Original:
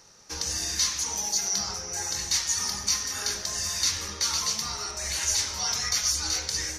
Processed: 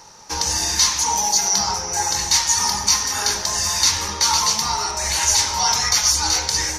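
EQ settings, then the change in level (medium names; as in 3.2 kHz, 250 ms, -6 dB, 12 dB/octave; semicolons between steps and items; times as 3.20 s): peaking EQ 900 Hz +13.5 dB 0.33 oct; +8.5 dB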